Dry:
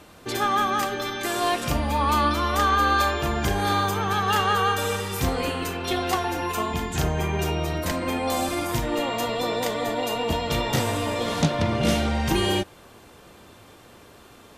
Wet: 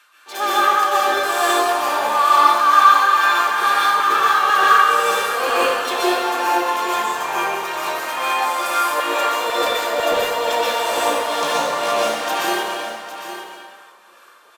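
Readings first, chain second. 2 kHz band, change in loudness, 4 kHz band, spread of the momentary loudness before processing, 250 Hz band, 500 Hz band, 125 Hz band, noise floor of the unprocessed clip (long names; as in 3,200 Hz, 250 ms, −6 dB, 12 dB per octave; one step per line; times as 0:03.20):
+9.0 dB, +7.0 dB, +5.5 dB, 6 LU, −4.0 dB, +5.0 dB, below −20 dB, −50 dBFS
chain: parametric band 740 Hz −5.5 dB 0.36 octaves
notch filter 2,000 Hz, Q 11
in parallel at −10 dB: fuzz pedal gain 31 dB, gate −38 dBFS
on the sum: auto-filter high-pass saw down 2 Hz 530–1,600 Hz
amplitude tremolo 2.2 Hz, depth 87%
on a send: single-tap delay 809 ms −11 dB
on the sum: dense smooth reverb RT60 1.7 s, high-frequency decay 0.65×, pre-delay 110 ms, DRR −7 dB
level −3.5 dB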